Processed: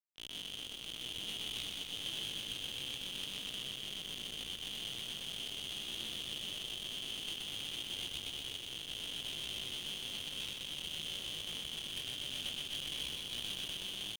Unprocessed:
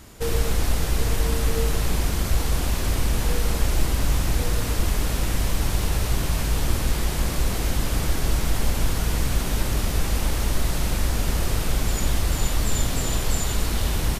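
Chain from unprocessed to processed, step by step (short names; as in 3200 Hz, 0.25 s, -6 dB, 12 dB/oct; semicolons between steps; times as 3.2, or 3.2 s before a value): AGC gain up to 9 dB; Schmitt trigger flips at -16.5 dBFS; ladder band-pass 1900 Hz, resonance 75%; tube stage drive 36 dB, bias 0.4; pitch shift +10 st; lo-fi delay 0.124 s, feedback 80%, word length 10-bit, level -4 dB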